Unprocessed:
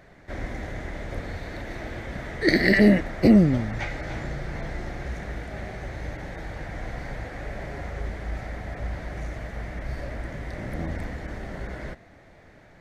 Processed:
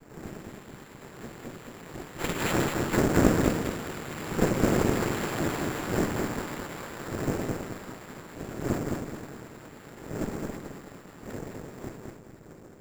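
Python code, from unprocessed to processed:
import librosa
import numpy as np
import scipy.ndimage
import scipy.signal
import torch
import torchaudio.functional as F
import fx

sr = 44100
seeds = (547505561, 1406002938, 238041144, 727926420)

p1 = fx.dmg_wind(x, sr, seeds[0], corner_hz=180.0, level_db=-23.0)
p2 = fx.doppler_pass(p1, sr, speed_mps=34, closest_m=21.0, pass_at_s=5.29)
p3 = fx.high_shelf(p2, sr, hz=2600.0, db=12.0)
p4 = fx.noise_vocoder(p3, sr, seeds[1], bands=3)
p5 = p4 + fx.echo_feedback(p4, sr, ms=212, feedback_pct=38, wet_db=-3.5, dry=0)
p6 = (np.kron(scipy.signal.resample_poly(p5, 1, 6), np.eye(6)[0]) * 6)[:len(p5)]
p7 = fx.running_max(p6, sr, window=9)
y = p7 * librosa.db_to_amplitude(-9.0)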